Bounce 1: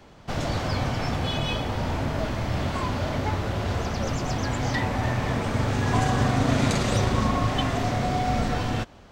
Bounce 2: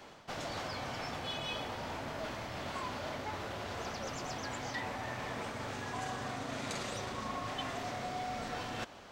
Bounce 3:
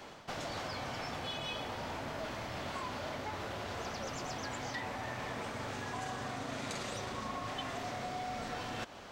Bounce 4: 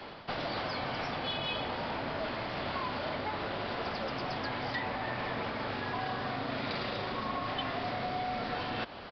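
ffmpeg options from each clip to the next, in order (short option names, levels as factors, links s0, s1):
-af "lowshelf=f=73:g=-5.5,areverse,acompressor=threshold=0.0158:ratio=4,areverse,lowshelf=f=280:g=-12,volume=1.19"
-af "acompressor=threshold=0.00794:ratio=2,volume=1.41"
-filter_complex "[0:a]acrossover=split=110|1000[s0][s1][s2];[s0]aeval=exprs='(mod(299*val(0)+1,2)-1)/299':c=same[s3];[s3][s1][s2]amix=inputs=3:normalize=0,aresample=11025,aresample=44100,volume=1.78"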